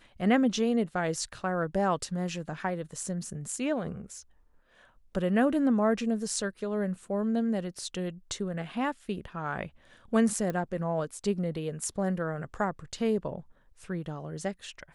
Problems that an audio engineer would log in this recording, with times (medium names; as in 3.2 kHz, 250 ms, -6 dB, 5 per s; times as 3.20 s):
10.50 s: pop -20 dBFS